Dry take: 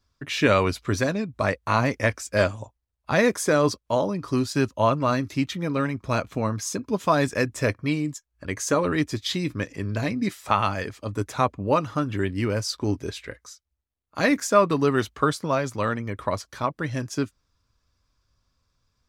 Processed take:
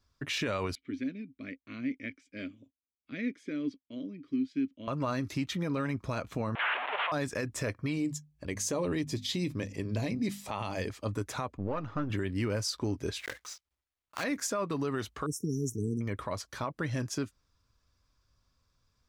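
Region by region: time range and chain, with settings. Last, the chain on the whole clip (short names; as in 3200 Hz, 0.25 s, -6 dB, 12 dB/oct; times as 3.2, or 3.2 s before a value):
0.75–4.88 vowel filter i + high shelf 5200 Hz -8 dB
6.55–7.12 delta modulation 16 kbps, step -19 dBFS + HPF 660 Hz 24 dB/oct
7.96–10.9 bell 1400 Hz -11 dB 0.72 oct + notches 50/100/150/200/250 Hz
11.57–12.1 half-wave gain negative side -7 dB + tape spacing loss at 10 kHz 24 dB
13.19–14.24 block floating point 3-bit + LPF 3400 Hz 6 dB/oct + tilt shelf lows -7.5 dB, about 650 Hz
15.26–16.01 brick-wall FIR band-stop 460–5300 Hz + high shelf 7200 Hz +6.5 dB
whole clip: compressor, threshold -23 dBFS; limiter -21 dBFS; gain -2 dB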